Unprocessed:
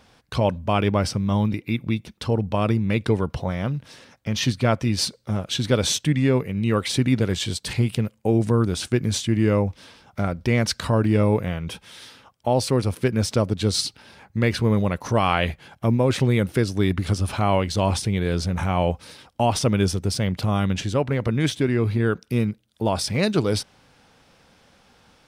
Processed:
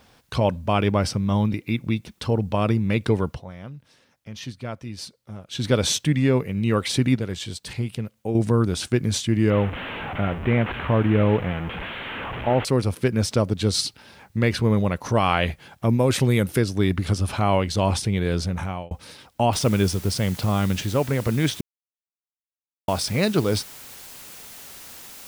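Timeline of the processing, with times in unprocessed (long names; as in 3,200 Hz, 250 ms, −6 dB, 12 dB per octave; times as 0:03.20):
0:03.28–0:05.64: duck −12.5 dB, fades 0.13 s
0:07.16–0:08.35: clip gain −6 dB
0:09.50–0:12.65: linear delta modulator 16 kbit/s, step −25 dBFS
0:15.89–0:16.59: high-shelf EQ 7,400 Hz +12 dB
0:18.27–0:18.91: fade out equal-power
0:19.53: noise floor change −69 dB −42 dB
0:21.61–0:22.88: silence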